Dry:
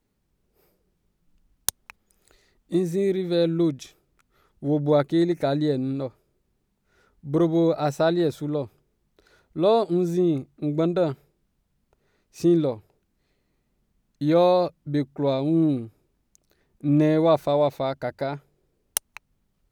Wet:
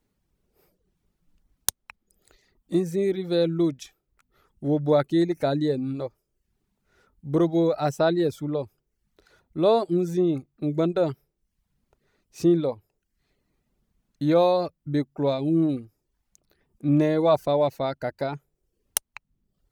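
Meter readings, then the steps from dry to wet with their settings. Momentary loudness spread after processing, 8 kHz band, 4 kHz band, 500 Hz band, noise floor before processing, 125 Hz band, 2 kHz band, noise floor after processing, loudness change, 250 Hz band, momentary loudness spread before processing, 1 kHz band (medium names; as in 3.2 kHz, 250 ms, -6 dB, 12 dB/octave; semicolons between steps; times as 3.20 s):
11 LU, no reading, -0.5 dB, -1.0 dB, -73 dBFS, -1.5 dB, -0.5 dB, -79 dBFS, -1.0 dB, -1.0 dB, 11 LU, -1.0 dB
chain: reverb removal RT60 0.57 s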